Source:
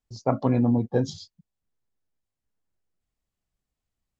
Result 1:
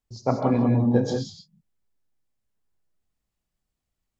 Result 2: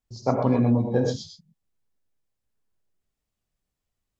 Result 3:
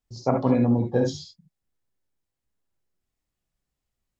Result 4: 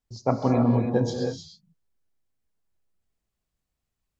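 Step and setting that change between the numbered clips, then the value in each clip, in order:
non-linear reverb, gate: 210, 140, 90, 340 ms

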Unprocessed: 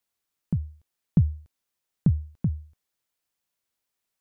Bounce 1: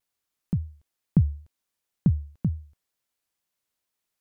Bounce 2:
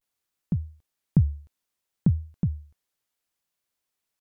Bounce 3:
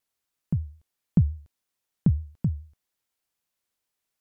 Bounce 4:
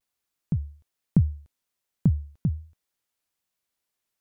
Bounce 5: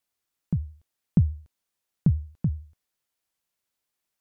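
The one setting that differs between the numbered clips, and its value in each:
vibrato, rate: 2.1, 0.6, 6.9, 1.2, 13 Hz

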